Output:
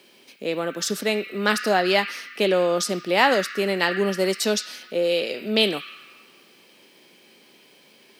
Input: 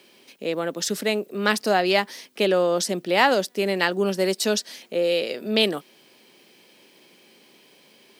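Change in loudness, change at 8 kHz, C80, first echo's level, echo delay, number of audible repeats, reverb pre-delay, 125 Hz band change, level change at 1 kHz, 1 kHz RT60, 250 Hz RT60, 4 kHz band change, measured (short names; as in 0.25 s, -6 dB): +0.5 dB, 0.0 dB, 11.0 dB, none, none, none, 4 ms, 0.0 dB, 0.0 dB, 1.9 s, 2.3 s, +1.0 dB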